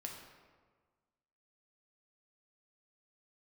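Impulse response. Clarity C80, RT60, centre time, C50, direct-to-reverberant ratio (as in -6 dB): 5.5 dB, 1.5 s, 50 ms, 3.5 dB, 0.0 dB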